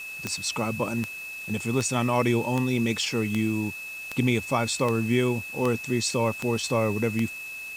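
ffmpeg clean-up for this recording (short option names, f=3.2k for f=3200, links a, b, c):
-af "adeclick=t=4,bandreject=f=2.6k:w=30,afwtdn=0.0045"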